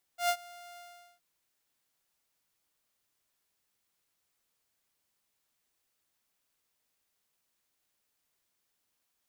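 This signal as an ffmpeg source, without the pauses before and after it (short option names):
-f lavfi -i "aevalsrc='0.0841*(2*mod(701*t,1)-1)':d=1.019:s=44100,afade=t=in:d=0.113,afade=t=out:st=0.113:d=0.067:silence=0.0668,afade=t=out:st=0.6:d=0.419"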